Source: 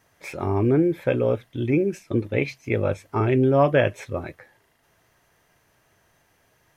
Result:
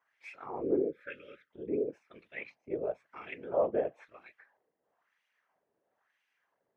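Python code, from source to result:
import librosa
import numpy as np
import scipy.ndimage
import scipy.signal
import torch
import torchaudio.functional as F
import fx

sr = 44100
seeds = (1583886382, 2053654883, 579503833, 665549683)

y = fx.whisperise(x, sr, seeds[0])
y = fx.wah_lfo(y, sr, hz=1.0, low_hz=410.0, high_hz=2600.0, q=2.1)
y = fx.spec_box(y, sr, start_s=0.89, length_s=0.61, low_hz=590.0, high_hz=1200.0, gain_db=-23)
y = y * librosa.db_to_amplitude(-8.0)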